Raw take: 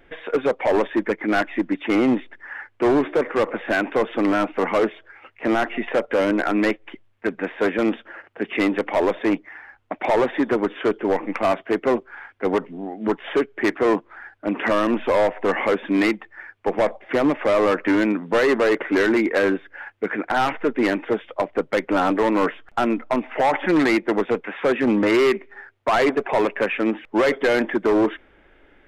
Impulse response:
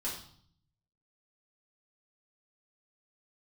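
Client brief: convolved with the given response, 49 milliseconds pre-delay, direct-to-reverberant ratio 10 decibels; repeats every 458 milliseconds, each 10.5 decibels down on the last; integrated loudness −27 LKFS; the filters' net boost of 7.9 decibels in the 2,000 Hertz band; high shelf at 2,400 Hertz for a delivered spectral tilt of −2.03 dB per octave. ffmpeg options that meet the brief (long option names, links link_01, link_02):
-filter_complex "[0:a]equalizer=frequency=2000:width_type=o:gain=6,highshelf=frequency=2400:gain=8,aecho=1:1:458|916|1374:0.299|0.0896|0.0269,asplit=2[link_01][link_02];[1:a]atrim=start_sample=2205,adelay=49[link_03];[link_02][link_03]afir=irnorm=-1:irlink=0,volume=-12.5dB[link_04];[link_01][link_04]amix=inputs=2:normalize=0,volume=-8.5dB"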